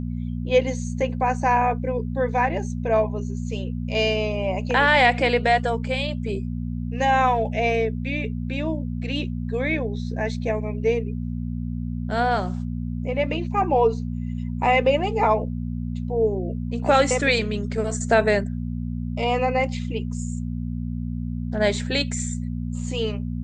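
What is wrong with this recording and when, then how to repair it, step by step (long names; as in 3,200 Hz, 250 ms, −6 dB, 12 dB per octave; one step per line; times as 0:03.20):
mains hum 60 Hz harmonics 4 −28 dBFS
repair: hum removal 60 Hz, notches 4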